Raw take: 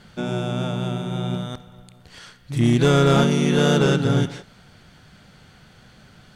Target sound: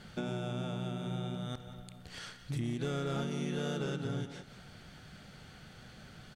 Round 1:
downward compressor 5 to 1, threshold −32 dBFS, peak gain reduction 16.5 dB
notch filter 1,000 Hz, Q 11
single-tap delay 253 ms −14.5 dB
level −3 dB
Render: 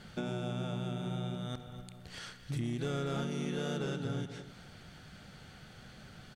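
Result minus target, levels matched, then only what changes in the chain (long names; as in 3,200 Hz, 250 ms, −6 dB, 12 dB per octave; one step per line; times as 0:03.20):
echo 72 ms late
change: single-tap delay 181 ms −14.5 dB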